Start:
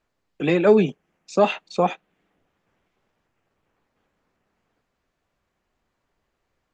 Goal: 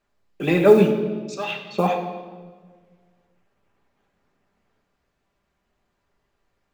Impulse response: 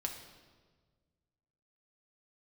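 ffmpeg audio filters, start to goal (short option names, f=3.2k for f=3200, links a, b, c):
-filter_complex "[0:a]asettb=1/sr,asplit=3[a][b][c];[a]atrim=end=1.344[d];[b]atrim=start=1.34:end=1.78,asetpts=PTS-STARTPTS,afade=t=in:d=0.004:c=qsin,afade=t=out:st=0.436:d=0.004:c=qsin,bandpass=f=2.9k:t=q:w=1.3:csg=0[e];[c]atrim=start=1.776[f];[d][e]acrossfade=d=0.004:c1=hsin:c2=qsin[g];[g][f]acrossfade=d=0.004:c1=qsin:c2=hsin,acrusher=bits=8:mode=log:mix=0:aa=0.000001[h];[1:a]atrim=start_sample=2205[i];[h][i]afir=irnorm=-1:irlink=0,volume=1dB"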